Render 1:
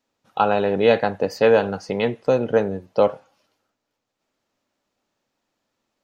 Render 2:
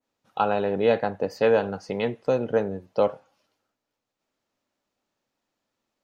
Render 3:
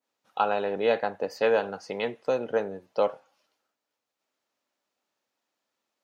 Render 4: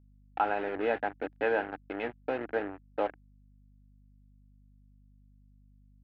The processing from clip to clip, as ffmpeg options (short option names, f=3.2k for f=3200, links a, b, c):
-af "adynamicequalizer=threshold=0.0224:dfrequency=1700:dqfactor=0.7:tfrequency=1700:tqfactor=0.7:attack=5:release=100:ratio=0.375:range=3:mode=cutabove:tftype=highshelf,volume=-4.5dB"
-af "highpass=f=510:p=1"
-af "acrusher=bits=4:mix=0:aa=0.5,highpass=120,equalizer=f=190:t=q:w=4:g=-7,equalizer=f=300:t=q:w=4:g=9,equalizer=f=520:t=q:w=4:g=-5,equalizer=f=780:t=q:w=4:g=4,equalizer=f=1.1k:t=q:w=4:g=-6,equalizer=f=1.6k:t=q:w=4:g=6,lowpass=f=2.6k:w=0.5412,lowpass=f=2.6k:w=1.3066,aeval=exprs='val(0)+0.002*(sin(2*PI*50*n/s)+sin(2*PI*2*50*n/s)/2+sin(2*PI*3*50*n/s)/3+sin(2*PI*4*50*n/s)/4+sin(2*PI*5*50*n/s)/5)':c=same,volume=-4.5dB"